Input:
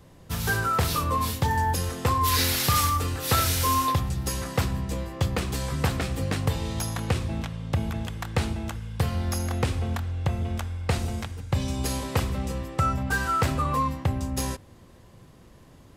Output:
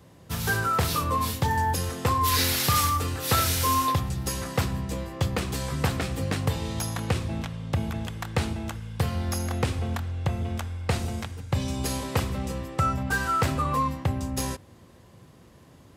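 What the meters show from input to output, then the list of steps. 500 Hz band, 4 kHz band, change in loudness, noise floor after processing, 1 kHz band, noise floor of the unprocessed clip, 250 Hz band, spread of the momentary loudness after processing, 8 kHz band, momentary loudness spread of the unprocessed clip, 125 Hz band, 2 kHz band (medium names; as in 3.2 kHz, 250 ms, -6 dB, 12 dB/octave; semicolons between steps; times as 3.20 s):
0.0 dB, 0.0 dB, -0.5 dB, -53 dBFS, 0.0 dB, -51 dBFS, 0.0 dB, 9 LU, 0.0 dB, 8 LU, -1.0 dB, 0.0 dB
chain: high-pass 66 Hz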